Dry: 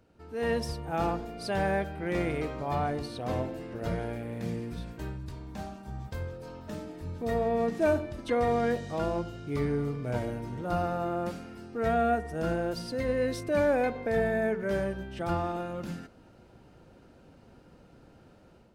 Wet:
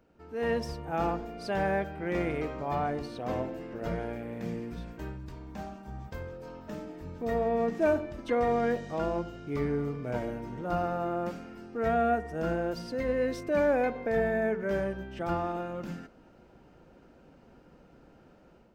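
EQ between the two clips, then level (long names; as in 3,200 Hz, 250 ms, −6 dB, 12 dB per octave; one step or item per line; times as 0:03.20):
graphic EQ with 15 bands 100 Hz −9 dB, 4,000 Hz −5 dB, 10,000 Hz −11 dB
0.0 dB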